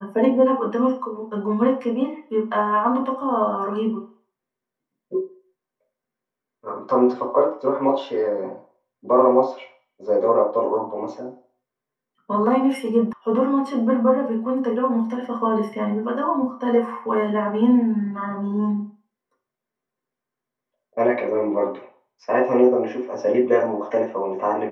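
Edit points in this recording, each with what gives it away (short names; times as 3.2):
13.13 sound cut off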